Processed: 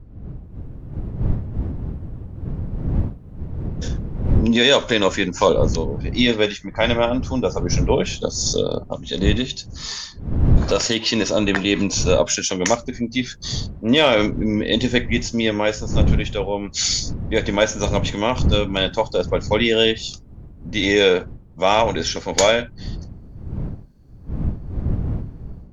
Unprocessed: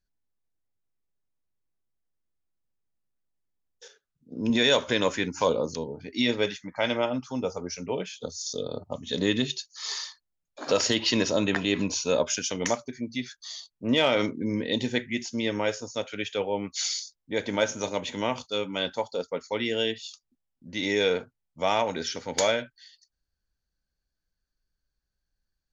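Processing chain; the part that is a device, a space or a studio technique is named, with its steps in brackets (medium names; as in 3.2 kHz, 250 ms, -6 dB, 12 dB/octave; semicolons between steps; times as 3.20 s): smartphone video outdoors (wind noise 120 Hz -32 dBFS; level rider gain up to 14.5 dB; trim -1 dB; AAC 96 kbps 44.1 kHz)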